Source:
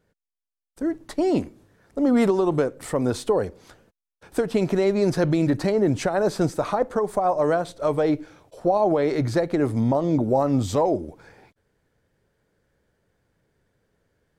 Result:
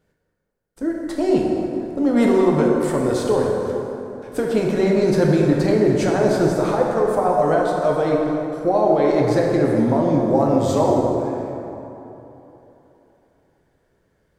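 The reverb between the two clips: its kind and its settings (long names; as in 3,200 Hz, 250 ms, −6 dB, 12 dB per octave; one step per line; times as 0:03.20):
dense smooth reverb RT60 3.3 s, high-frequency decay 0.5×, DRR −2 dB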